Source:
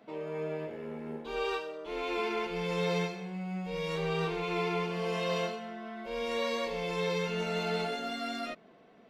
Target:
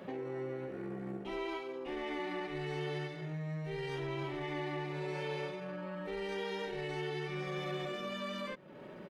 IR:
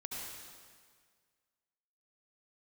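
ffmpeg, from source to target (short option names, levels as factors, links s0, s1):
-af "asetrate=37084,aresample=44100,atempo=1.18921,acompressor=threshold=0.00224:ratio=3,volume=3.35"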